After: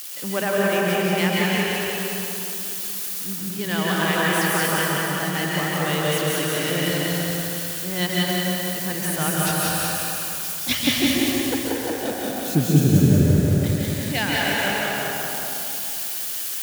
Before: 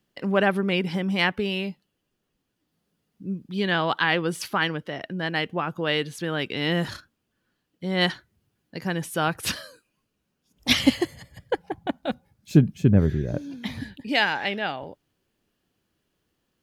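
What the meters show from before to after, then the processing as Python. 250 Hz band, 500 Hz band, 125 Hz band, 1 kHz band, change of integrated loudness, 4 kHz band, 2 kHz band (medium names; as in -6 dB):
+3.5 dB, +3.5 dB, +5.0 dB, +3.0 dB, +3.5 dB, +3.5 dB, +3.5 dB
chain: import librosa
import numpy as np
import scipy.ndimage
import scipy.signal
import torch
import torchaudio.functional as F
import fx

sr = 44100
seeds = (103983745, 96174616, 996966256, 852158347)

p1 = x + 0.5 * 10.0 ** (-21.5 / 20.0) * np.diff(np.sign(x), prepend=np.sign(x[:1]))
p2 = p1 + fx.echo_feedback(p1, sr, ms=181, feedback_pct=52, wet_db=-3.0, dry=0)
p3 = fx.rev_plate(p2, sr, seeds[0], rt60_s=2.8, hf_ratio=0.6, predelay_ms=120, drr_db=-3.5)
y = p3 * librosa.db_to_amplitude(-4.5)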